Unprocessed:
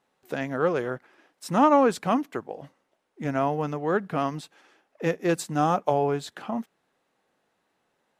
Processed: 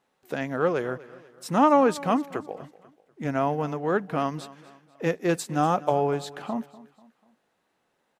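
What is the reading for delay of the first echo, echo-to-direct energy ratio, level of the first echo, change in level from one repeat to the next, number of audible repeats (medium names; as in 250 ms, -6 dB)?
245 ms, -18.0 dB, -19.0 dB, -7.5 dB, 3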